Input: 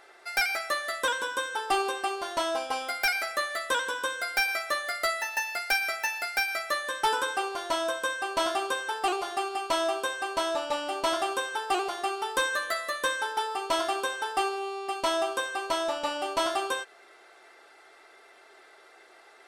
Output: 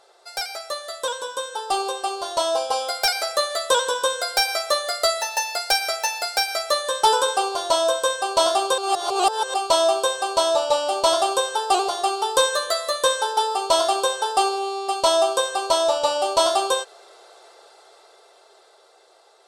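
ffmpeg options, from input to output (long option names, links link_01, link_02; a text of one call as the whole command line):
ffmpeg -i in.wav -filter_complex "[0:a]asplit=3[link_01][link_02][link_03];[link_01]atrim=end=8.782[link_04];[link_02]atrim=start=8.778:end=9.542,asetpts=PTS-STARTPTS,areverse[link_05];[link_03]atrim=start=9.538[link_06];[link_04][link_05]acrossfade=duration=0.004:curve1=hsin:curve2=hsin[link_07];[link_07][link_06]acrossfade=duration=0.004:curve1=hsin:curve2=hsin,equalizer=frequency=125:width_type=o:width=1:gain=7,equalizer=frequency=250:width_type=o:width=1:gain=-12,equalizer=frequency=500:width_type=o:width=1:gain=11,equalizer=frequency=1000:width_type=o:width=1:gain=5,equalizer=frequency=2000:width_type=o:width=1:gain=-10,equalizer=frequency=4000:width_type=o:width=1:gain=9,equalizer=frequency=8000:width_type=o:width=1:gain=8,dynaudnorm=framelen=650:gausssize=7:maxgain=11.5dB,volume=-5dB" out.wav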